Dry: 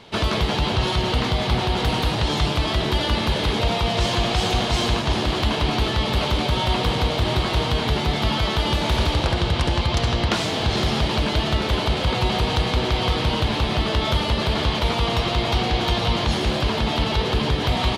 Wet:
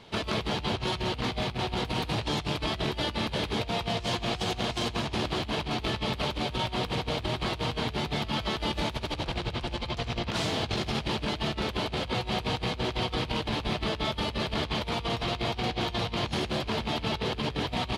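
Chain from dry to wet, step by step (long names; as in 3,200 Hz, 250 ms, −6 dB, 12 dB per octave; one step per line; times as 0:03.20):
loose part that buzzes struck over −23 dBFS, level −19 dBFS
low-shelf EQ 130 Hz +3 dB
compressor whose output falls as the input rises −22 dBFS, ratio −0.5
level −8.5 dB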